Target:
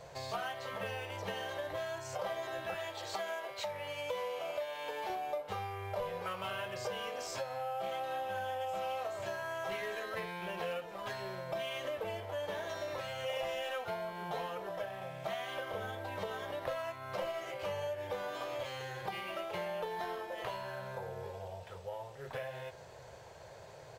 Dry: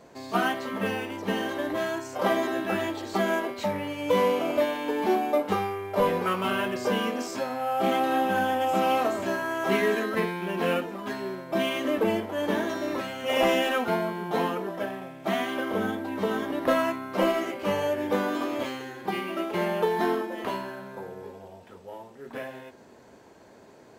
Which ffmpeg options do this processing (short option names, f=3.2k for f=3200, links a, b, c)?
-filter_complex "[0:a]asettb=1/sr,asplit=3[a][b][c];[a]atrim=end=2.744[d];[b]atrim=start=2.74:end=5.1,asetpts=PTS-STARTPTS,afade=t=in:d=0.004:c=qsin,afade=t=out:st=2.356:d=0.004:c=qsin,lowshelf=f=260:g=-11.5[e];[c]atrim=start=5.096[f];[d][e]acrossfade=d=0.004:c1=hsin:c2=qsin[g];[g][f]acrossfade=d=0.004:c1=qsin:c2=hsin,volume=15.5dB,asoftclip=hard,volume=-15.5dB,firequalizer=gain_entry='entry(140,0);entry(230,-27);entry(520,-3);entry(1100,-7);entry(3500,-3);entry(11000,-7)':delay=0.05:min_phase=1,acompressor=threshold=-45dB:ratio=4,volume=6.5dB"